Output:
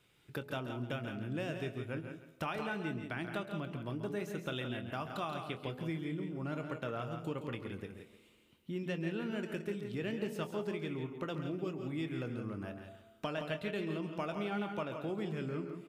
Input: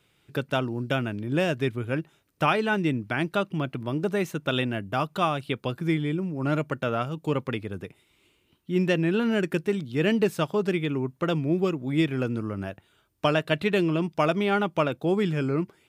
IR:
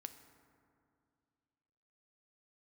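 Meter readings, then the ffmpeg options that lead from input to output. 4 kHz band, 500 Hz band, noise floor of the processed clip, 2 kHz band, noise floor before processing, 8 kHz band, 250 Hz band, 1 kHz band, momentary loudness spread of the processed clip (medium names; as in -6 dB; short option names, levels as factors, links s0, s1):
-13.0 dB, -13.0 dB, -65 dBFS, -12.5 dB, -67 dBFS, -11.5 dB, -12.5 dB, -13.5 dB, 6 LU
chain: -filter_complex "[0:a]bandreject=f=84.23:t=h:w=4,bandreject=f=168.46:t=h:w=4,bandreject=f=252.69:t=h:w=4,bandreject=f=336.92:t=h:w=4,bandreject=f=421.15:t=h:w=4,bandreject=f=505.38:t=h:w=4,bandreject=f=589.61:t=h:w=4,bandreject=f=673.84:t=h:w=4,bandreject=f=758.07:t=h:w=4,bandreject=f=842.3:t=h:w=4,bandreject=f=926.53:t=h:w=4,acompressor=threshold=0.0141:ratio=2.5,asplit=2[s0][s1];[s1]adelay=24,volume=0.251[s2];[s0][s2]amix=inputs=2:normalize=0,aecho=1:1:169:0.398,asplit=2[s3][s4];[1:a]atrim=start_sample=2205,asetrate=66150,aresample=44100,adelay=135[s5];[s4][s5]afir=irnorm=-1:irlink=0,volume=0.841[s6];[s3][s6]amix=inputs=2:normalize=0,volume=0.631"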